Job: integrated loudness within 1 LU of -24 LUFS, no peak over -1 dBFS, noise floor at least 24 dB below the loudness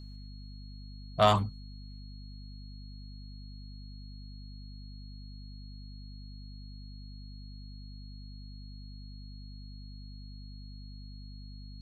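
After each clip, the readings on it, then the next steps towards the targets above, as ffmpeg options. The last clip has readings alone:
hum 50 Hz; highest harmonic 250 Hz; hum level -43 dBFS; steady tone 4.3 kHz; tone level -56 dBFS; loudness -39.0 LUFS; peak level -8.0 dBFS; loudness target -24.0 LUFS
-> -af "bandreject=f=50:t=h:w=6,bandreject=f=100:t=h:w=6,bandreject=f=150:t=h:w=6,bandreject=f=200:t=h:w=6,bandreject=f=250:t=h:w=6"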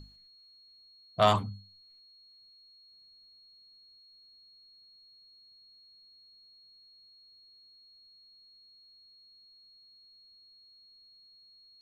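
hum not found; steady tone 4.3 kHz; tone level -56 dBFS
-> -af "bandreject=f=4300:w=30"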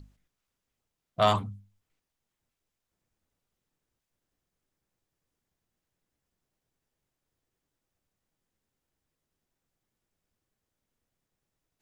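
steady tone not found; loudness -26.5 LUFS; peak level -8.0 dBFS; loudness target -24.0 LUFS
-> -af "volume=1.33"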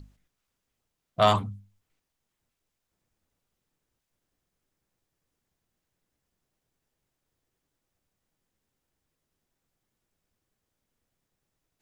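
loudness -24.0 LUFS; peak level -5.5 dBFS; noise floor -83 dBFS

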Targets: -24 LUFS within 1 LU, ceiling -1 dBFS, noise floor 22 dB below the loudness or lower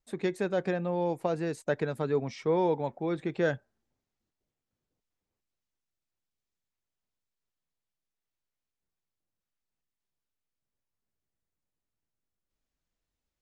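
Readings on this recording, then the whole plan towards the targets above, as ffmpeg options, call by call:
loudness -30.5 LUFS; peak level -15.0 dBFS; loudness target -24.0 LUFS
-> -af "volume=2.11"

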